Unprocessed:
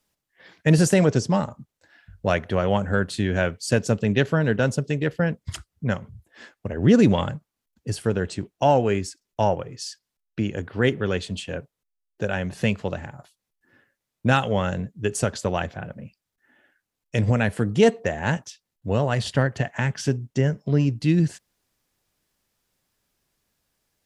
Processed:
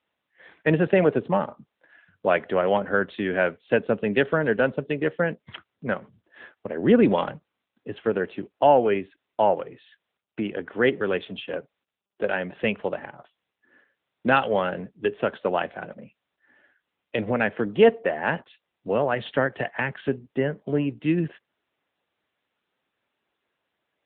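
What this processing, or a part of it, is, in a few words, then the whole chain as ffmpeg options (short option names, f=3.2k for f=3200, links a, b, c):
telephone: -af "highpass=290,lowpass=3.4k,volume=2.5dB" -ar 8000 -c:a libopencore_amrnb -b:a 10200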